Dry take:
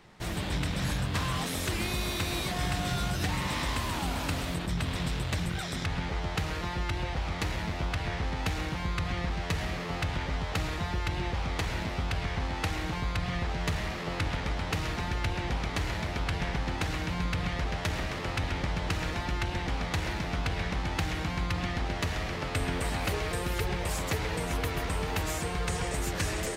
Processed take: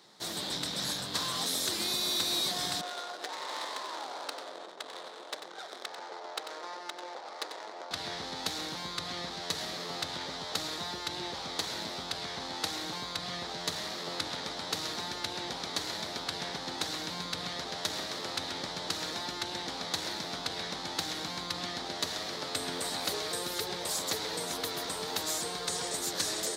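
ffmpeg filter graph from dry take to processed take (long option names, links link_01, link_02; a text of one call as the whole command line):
ffmpeg -i in.wav -filter_complex "[0:a]asettb=1/sr,asplit=3[link_01][link_02][link_03];[link_01]atrim=end=2.814[link_04];[link_02]atrim=start=2.81:end=7.91,asetpts=PTS-STARTPTS,afade=type=in:duration=0.004:curve=qsin,afade=type=out:start_time=5.096:duration=0.004:curve=qsin,highpass=frequency=410:width=0.5412,highpass=frequency=410:width=1.3066,adynamicsmooth=sensitivity=4.5:basefreq=590,aecho=1:1:93:0.355,atrim=end_sample=224910[link_05];[link_03]atrim=start=7.906[link_06];[link_04][link_05]acrossfade=duration=0.004:curve1=hsin:curve2=qsin[link_07];[link_07][link_06]acrossfade=duration=0.004:curve1=qsin:curve2=hsin,highpass=270,highshelf=frequency=3200:width_type=q:width=3:gain=6,volume=-2.5dB" out.wav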